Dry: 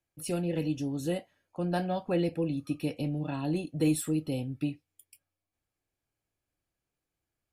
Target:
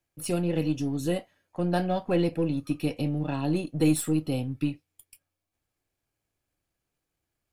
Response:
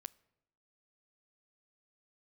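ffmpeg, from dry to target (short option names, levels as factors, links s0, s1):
-af "aeval=exprs='if(lt(val(0),0),0.708*val(0),val(0))':c=same,volume=1.78"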